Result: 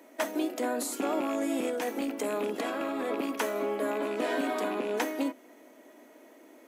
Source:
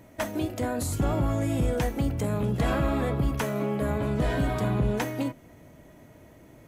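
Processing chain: rattle on loud lows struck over -23 dBFS, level -31 dBFS; steep high-pass 250 Hz 48 dB/octave; 1.64–3.26 s: compressor with a negative ratio -31 dBFS, ratio -1

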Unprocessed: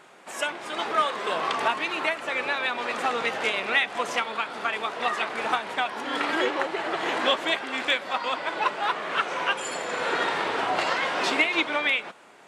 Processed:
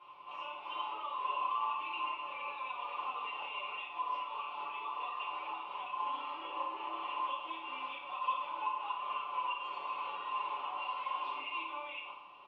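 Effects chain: comb 6.9 ms, depth 70%; compression, threshold -28 dBFS, peak gain reduction 13 dB; peak limiter -24.5 dBFS, peak gain reduction 8.5 dB; added noise pink -50 dBFS; two resonant band-passes 1.7 kHz, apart 1.4 oct; distance through air 350 m; reverberation RT60 0.75 s, pre-delay 3 ms, DRR -8.5 dB; trim -4.5 dB

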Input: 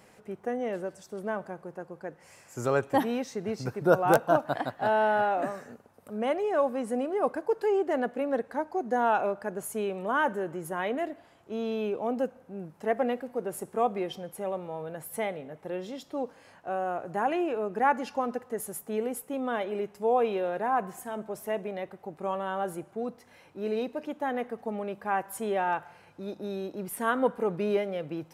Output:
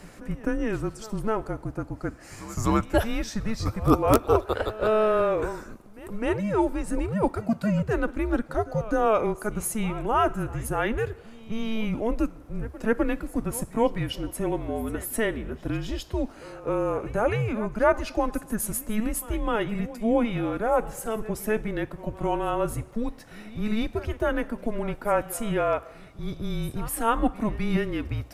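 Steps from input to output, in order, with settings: dynamic bell 410 Hz, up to -5 dB, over -36 dBFS, Q 0.73; in parallel at +2 dB: gain riding within 3 dB 0.5 s; on the sum: frequency shift -220 Hz; pre-echo 256 ms -17.5 dB

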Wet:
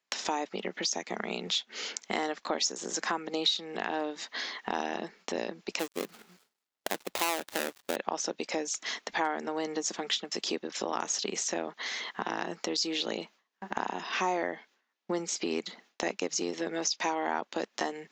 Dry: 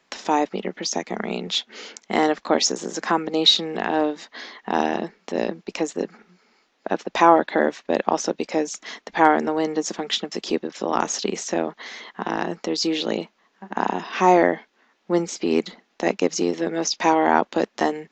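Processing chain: 5.79–7.96 s: dead-time distortion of 0.26 ms; gate with hold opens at -47 dBFS; tilt EQ +2 dB/octave; compression 3:1, threshold -31 dBFS, peak gain reduction 17.5 dB

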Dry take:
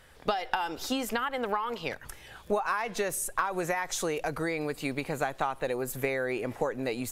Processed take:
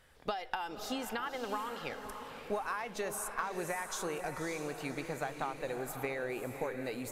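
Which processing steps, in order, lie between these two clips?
echo that smears into a reverb 567 ms, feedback 46%, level -7.5 dB; trim -7.5 dB

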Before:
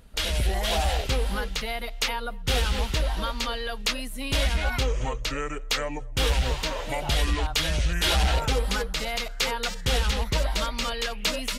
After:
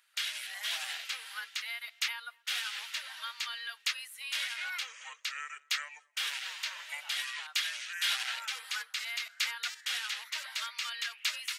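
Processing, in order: ladder high-pass 1.3 kHz, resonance 30%

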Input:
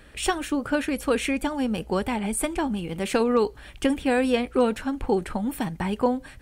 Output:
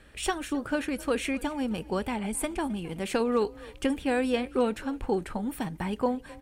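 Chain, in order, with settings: wow and flutter 17 cents; frequency-shifting echo 262 ms, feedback 31%, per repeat +30 Hz, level -21 dB; trim -4.5 dB

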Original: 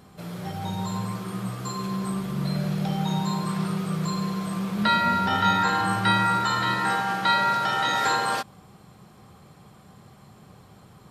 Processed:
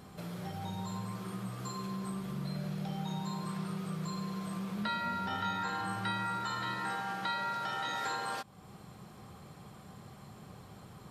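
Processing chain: compression 2:1, threshold -42 dBFS, peak gain reduction 13.5 dB; trim -1 dB

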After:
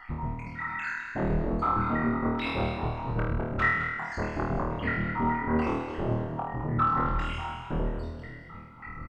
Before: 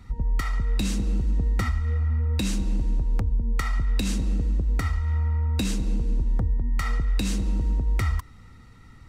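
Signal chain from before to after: random holes in the spectrogram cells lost 78%; bass shelf 77 Hz -8.5 dB; feedback comb 51 Hz, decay 0.24 s, harmonics all, mix 50%; sine folder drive 16 dB, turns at -20 dBFS; LFO low-pass saw down 1.7 Hz 990–2100 Hz; flutter echo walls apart 4.4 m, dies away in 0.92 s; added noise brown -53 dBFS; frequency-shifting echo 214 ms, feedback 36%, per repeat +42 Hz, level -9.5 dB; trim -8.5 dB

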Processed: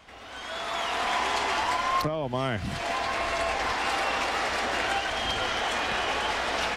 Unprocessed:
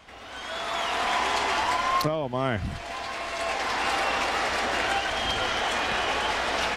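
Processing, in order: 1.98–3.73 s: three bands compressed up and down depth 100%; trim -1.5 dB

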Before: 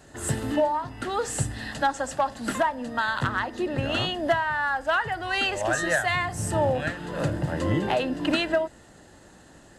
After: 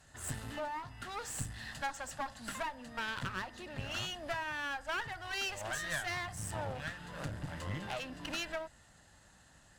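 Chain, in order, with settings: peaking EQ 360 Hz -14.5 dB 1.5 oct; one-sided clip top -37.5 dBFS; trim -7 dB

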